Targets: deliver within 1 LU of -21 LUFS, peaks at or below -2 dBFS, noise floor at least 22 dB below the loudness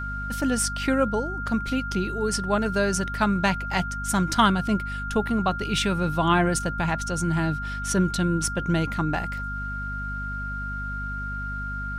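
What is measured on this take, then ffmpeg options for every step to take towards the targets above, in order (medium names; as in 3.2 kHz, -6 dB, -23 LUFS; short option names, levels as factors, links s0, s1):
hum 50 Hz; highest harmonic 250 Hz; hum level -31 dBFS; steady tone 1.4 kHz; tone level -31 dBFS; loudness -25.5 LUFS; peak level -5.5 dBFS; loudness target -21.0 LUFS
-> -af "bandreject=f=50:t=h:w=4,bandreject=f=100:t=h:w=4,bandreject=f=150:t=h:w=4,bandreject=f=200:t=h:w=4,bandreject=f=250:t=h:w=4"
-af "bandreject=f=1400:w=30"
-af "volume=1.68,alimiter=limit=0.794:level=0:latency=1"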